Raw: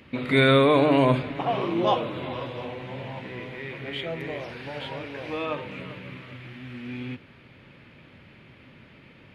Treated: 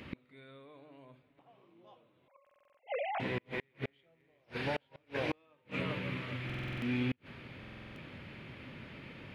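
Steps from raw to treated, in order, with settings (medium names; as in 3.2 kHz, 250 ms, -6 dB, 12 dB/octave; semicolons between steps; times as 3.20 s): 2.28–3.20 s: formants replaced by sine waves; inverted gate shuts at -25 dBFS, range -39 dB; buffer glitch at 2.42/6.45/7.59 s, samples 2048, times 7; trim +2 dB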